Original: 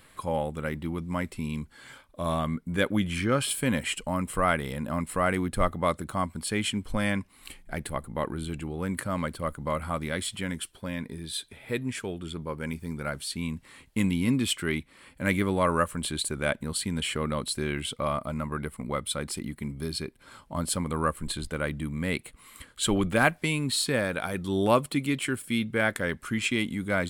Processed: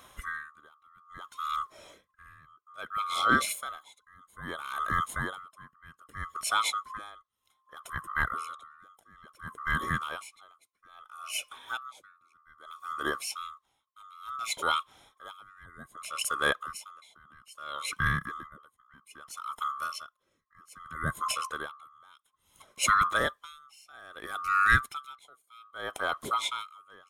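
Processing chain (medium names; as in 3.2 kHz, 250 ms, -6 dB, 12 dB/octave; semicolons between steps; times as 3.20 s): split-band scrambler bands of 1 kHz; logarithmic tremolo 0.61 Hz, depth 30 dB; trim +1.5 dB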